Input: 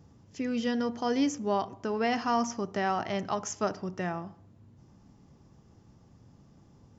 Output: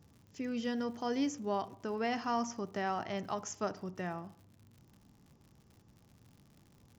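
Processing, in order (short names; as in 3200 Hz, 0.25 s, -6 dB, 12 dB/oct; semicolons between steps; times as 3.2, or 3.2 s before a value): crackle 110/s -45 dBFS; gain -6 dB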